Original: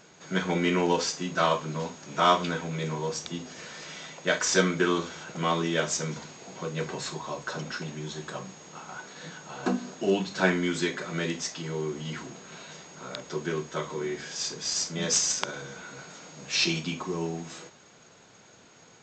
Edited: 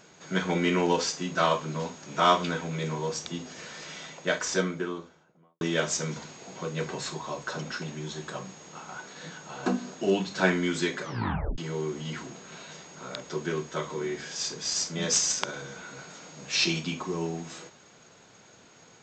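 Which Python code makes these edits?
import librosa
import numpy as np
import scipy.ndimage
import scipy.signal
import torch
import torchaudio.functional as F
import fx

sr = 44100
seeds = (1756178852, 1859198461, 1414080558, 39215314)

y = fx.studio_fade_out(x, sr, start_s=3.98, length_s=1.63)
y = fx.edit(y, sr, fx.tape_stop(start_s=11.02, length_s=0.56), tone=tone)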